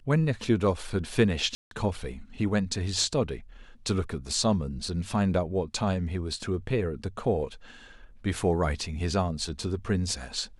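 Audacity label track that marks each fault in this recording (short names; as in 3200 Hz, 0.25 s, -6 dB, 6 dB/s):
1.550000	1.710000	gap 0.162 s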